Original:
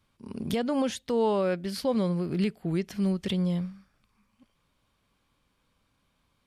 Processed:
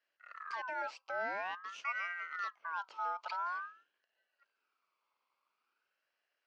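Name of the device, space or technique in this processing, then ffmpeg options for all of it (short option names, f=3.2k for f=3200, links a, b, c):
voice changer toy: -filter_complex "[0:a]asettb=1/sr,asplit=3[a][b][c];[a]atrim=end=0.534[d];[b]atrim=start=0.53:end=1.14,asetpts=PTS-STARTPTS,afade=t=in:d=0.004:c=qsin,afade=t=out:st=0.606:d=0.004:c=qsin,equalizer=f=2.6k:t=o:w=1.2:g=-4.5[e];[c]atrim=start=1.136[f];[d][e]acrossfade=d=0.004:c1=hsin:c2=qsin[g];[g][f]acrossfade=d=0.004:c1=qsin:c2=hsin,aeval=exprs='val(0)*sin(2*PI*1400*n/s+1400*0.25/0.48*sin(2*PI*0.48*n/s))':c=same,highpass=470,equalizer=f=770:t=q:w=4:g=-4,equalizer=f=1.8k:t=q:w=4:g=-9,equalizer=f=2.6k:t=q:w=4:g=3,equalizer=f=3.7k:t=q:w=4:g=-7,lowpass=f=4.9k:w=0.5412,lowpass=f=4.9k:w=1.3066,volume=-6.5dB"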